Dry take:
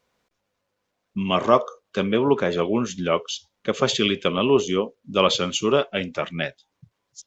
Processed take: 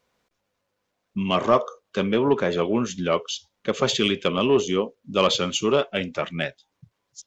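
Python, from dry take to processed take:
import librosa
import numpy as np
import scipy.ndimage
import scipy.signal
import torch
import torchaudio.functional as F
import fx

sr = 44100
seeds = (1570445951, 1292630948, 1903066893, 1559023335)

y = 10.0 ** (-7.5 / 20.0) * np.tanh(x / 10.0 ** (-7.5 / 20.0))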